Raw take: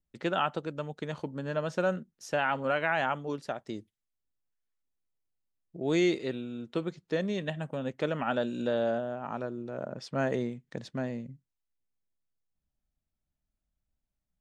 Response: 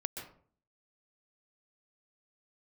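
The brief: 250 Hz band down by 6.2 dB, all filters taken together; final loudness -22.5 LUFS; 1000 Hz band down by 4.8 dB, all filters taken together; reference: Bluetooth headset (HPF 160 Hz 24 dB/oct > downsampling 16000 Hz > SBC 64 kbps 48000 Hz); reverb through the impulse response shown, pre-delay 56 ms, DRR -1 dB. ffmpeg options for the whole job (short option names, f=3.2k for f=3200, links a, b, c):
-filter_complex "[0:a]equalizer=f=250:t=o:g=-8,equalizer=f=1k:t=o:g=-6.5,asplit=2[a][b];[1:a]atrim=start_sample=2205,adelay=56[c];[b][c]afir=irnorm=-1:irlink=0,volume=0.5dB[d];[a][d]amix=inputs=2:normalize=0,highpass=f=160:w=0.5412,highpass=f=160:w=1.3066,aresample=16000,aresample=44100,volume=9.5dB" -ar 48000 -c:a sbc -b:a 64k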